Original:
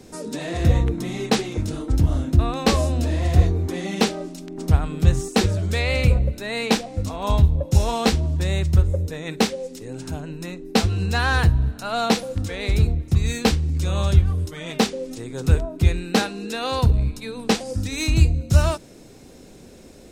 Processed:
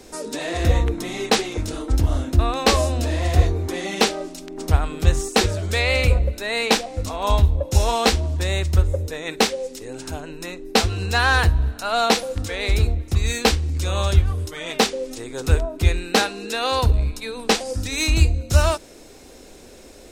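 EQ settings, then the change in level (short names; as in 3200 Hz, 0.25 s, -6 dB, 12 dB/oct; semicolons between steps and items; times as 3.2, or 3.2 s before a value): bell 150 Hz -13.5 dB 1.5 oct; +4.5 dB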